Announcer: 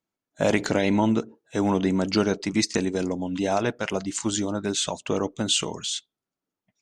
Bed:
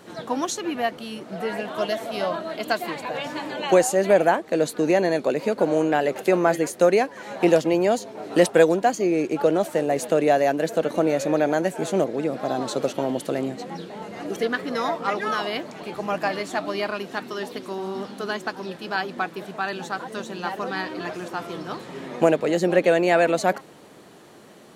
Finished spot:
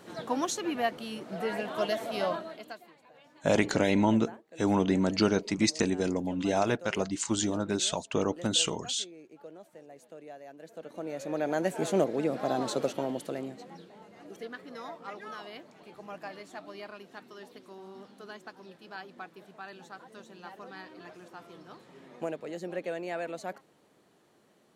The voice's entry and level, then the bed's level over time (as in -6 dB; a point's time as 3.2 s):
3.05 s, -3.0 dB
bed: 2.32 s -4.5 dB
2.93 s -28 dB
10.45 s -28 dB
11.74 s -4 dB
12.68 s -4 dB
14.09 s -17 dB